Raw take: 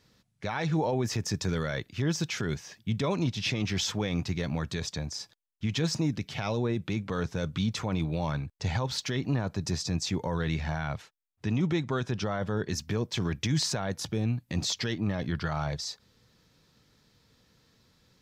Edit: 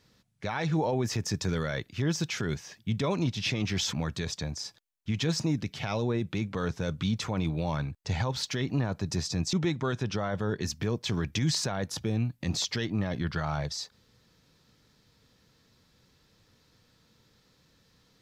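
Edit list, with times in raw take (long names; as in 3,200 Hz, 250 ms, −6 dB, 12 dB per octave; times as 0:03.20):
0:03.93–0:04.48: remove
0:10.08–0:11.61: remove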